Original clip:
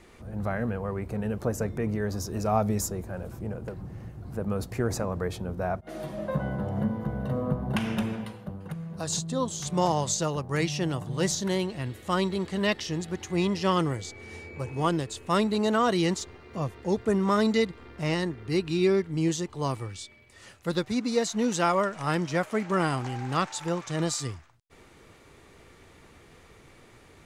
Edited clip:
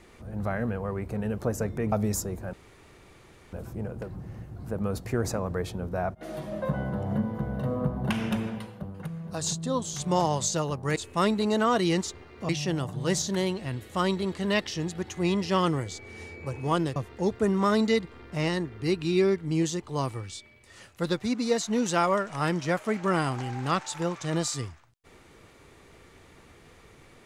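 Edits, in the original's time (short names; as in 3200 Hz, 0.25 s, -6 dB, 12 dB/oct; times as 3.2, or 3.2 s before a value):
1.92–2.58 cut
3.19 insert room tone 1.00 s
15.09–16.62 move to 10.62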